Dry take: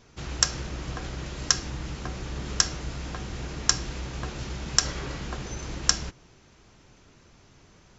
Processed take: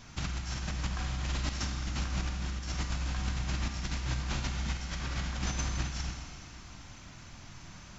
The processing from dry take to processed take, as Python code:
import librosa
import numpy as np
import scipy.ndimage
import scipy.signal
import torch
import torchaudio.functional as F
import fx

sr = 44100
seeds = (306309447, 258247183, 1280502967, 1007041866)

y = fx.peak_eq(x, sr, hz=430.0, db=-14.0, octaves=0.75)
y = fx.over_compress(y, sr, threshold_db=-38.0, ratio=-0.5)
y = fx.rev_schroeder(y, sr, rt60_s=2.2, comb_ms=32, drr_db=3.0)